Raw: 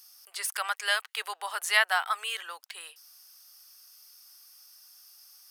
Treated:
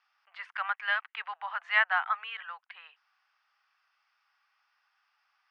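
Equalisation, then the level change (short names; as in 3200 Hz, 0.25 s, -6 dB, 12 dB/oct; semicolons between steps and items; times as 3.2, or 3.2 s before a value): HPF 760 Hz 24 dB/oct; LPF 2400 Hz 24 dB/oct; 0.0 dB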